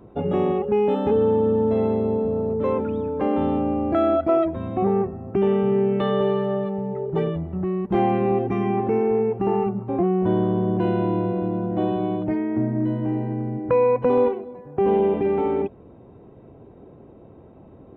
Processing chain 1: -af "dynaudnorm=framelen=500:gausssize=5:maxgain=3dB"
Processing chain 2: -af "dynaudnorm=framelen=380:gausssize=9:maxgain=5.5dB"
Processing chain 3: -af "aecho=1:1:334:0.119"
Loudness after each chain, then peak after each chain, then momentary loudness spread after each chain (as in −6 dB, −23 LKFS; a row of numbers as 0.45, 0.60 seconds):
−19.5, −18.0, −22.5 LKFS; −6.0, −4.0, −8.5 dBFS; 6, 6, 7 LU